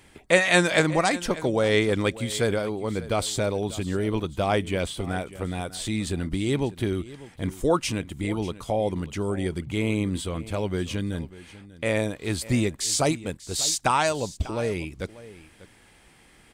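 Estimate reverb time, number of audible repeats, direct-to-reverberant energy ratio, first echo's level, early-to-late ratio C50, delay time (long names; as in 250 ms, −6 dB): no reverb audible, 1, no reverb audible, −17.5 dB, no reverb audible, 593 ms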